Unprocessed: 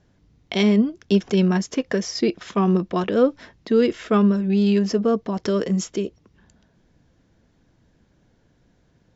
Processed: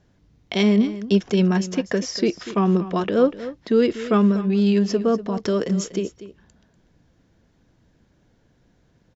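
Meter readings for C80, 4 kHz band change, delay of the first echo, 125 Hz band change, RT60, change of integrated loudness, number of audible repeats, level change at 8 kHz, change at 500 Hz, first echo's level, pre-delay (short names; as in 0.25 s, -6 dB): none, 0.0 dB, 0.242 s, 0.0 dB, none, 0.0 dB, 1, n/a, 0.0 dB, -14.5 dB, none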